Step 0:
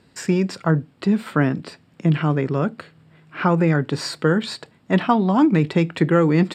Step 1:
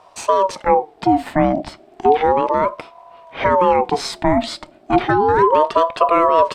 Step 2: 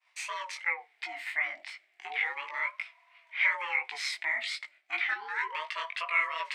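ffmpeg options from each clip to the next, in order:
-filter_complex "[0:a]lowshelf=f=200:g=11.5,asplit=2[a][b];[b]alimiter=limit=-16.5dB:level=0:latency=1:release=22,volume=1dB[c];[a][c]amix=inputs=2:normalize=0,aeval=exprs='val(0)*sin(2*PI*650*n/s+650*0.3/0.33*sin(2*PI*0.33*n/s))':c=same,volume=-1.5dB"
-af "agate=range=-33dB:threshold=-42dB:ratio=3:detection=peak,highpass=f=2.1k:t=q:w=6.5,flanger=delay=17.5:depth=4.2:speed=2.8,volume=-8dB"

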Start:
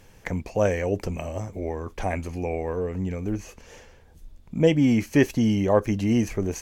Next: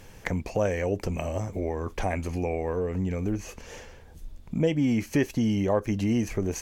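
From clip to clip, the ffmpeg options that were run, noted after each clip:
-af "acompressor=threshold=-32dB:ratio=2,volume=4dB"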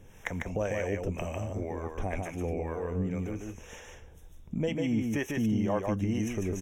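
-filter_complex "[0:a]acrossover=split=550[a][b];[a]aeval=exprs='val(0)*(1-0.7/2+0.7/2*cos(2*PI*2*n/s))':c=same[c];[b]aeval=exprs='val(0)*(1-0.7/2-0.7/2*cos(2*PI*2*n/s))':c=same[d];[c][d]amix=inputs=2:normalize=0,asuperstop=centerf=4500:order=20:qfactor=3.5,aecho=1:1:148:0.668,volume=-2.5dB"

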